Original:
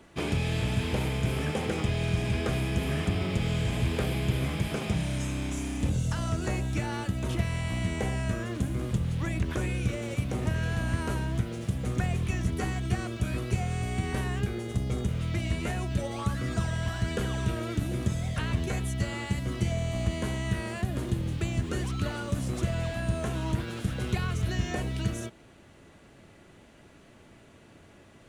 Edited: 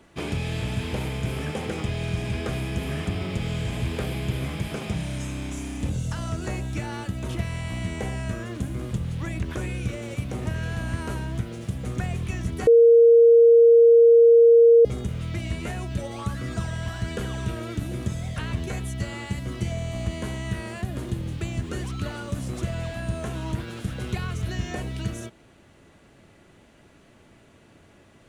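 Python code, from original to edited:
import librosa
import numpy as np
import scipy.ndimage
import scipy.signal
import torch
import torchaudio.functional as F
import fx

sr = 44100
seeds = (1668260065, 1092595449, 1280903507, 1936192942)

y = fx.edit(x, sr, fx.bleep(start_s=12.67, length_s=2.18, hz=465.0, db=-10.0), tone=tone)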